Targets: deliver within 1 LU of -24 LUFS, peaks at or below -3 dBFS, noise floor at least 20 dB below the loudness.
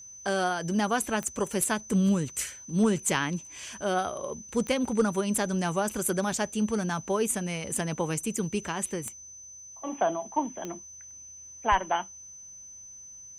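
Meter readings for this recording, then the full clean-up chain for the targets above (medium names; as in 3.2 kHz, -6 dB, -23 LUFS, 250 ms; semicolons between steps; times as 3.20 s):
clicks found 4; steady tone 6.1 kHz; tone level -44 dBFS; loudness -29.0 LUFS; peak level -11.5 dBFS; loudness target -24.0 LUFS
-> de-click; band-stop 6.1 kHz, Q 30; trim +5 dB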